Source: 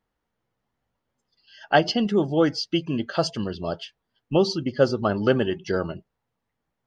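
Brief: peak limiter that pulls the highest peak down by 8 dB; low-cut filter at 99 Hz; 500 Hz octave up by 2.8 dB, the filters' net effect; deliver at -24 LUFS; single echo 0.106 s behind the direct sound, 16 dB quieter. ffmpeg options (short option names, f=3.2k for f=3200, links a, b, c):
-af "highpass=99,equalizer=f=500:t=o:g=3.5,alimiter=limit=-11dB:level=0:latency=1,aecho=1:1:106:0.158,volume=0.5dB"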